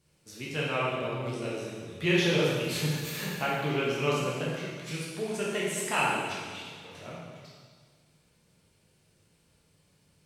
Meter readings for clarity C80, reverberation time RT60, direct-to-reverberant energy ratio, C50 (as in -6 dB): 1.0 dB, 1.7 s, -6.5 dB, -1.0 dB